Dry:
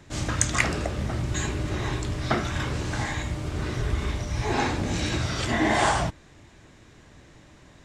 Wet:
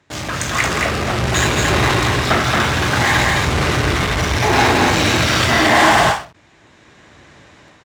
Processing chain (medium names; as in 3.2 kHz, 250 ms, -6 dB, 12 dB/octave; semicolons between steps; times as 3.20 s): in parallel at -3.5 dB: fuzz box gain 38 dB, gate -39 dBFS; on the sum: low-pass 3.4 kHz 6 dB/octave; level rider gain up to 13 dB; high-pass 60 Hz; bass shelf 460 Hz -10 dB; on a send: loudspeakers at several distances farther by 58 m -11 dB, 77 m -3 dB; on the sum: endings held to a fixed fall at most 160 dB/s; trim -2 dB